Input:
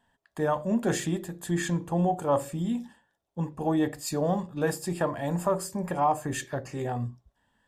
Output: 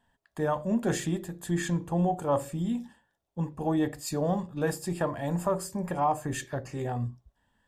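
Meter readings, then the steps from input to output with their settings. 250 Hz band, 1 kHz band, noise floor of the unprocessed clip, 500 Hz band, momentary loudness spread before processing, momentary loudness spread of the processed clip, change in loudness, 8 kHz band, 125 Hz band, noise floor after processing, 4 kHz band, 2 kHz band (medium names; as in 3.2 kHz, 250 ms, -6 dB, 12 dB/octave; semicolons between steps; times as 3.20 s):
-1.0 dB, -2.0 dB, -77 dBFS, -1.5 dB, 8 LU, 7 LU, -1.5 dB, -2.0 dB, 0.0 dB, -79 dBFS, -2.0 dB, -2.0 dB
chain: bass shelf 100 Hz +6.5 dB; trim -2 dB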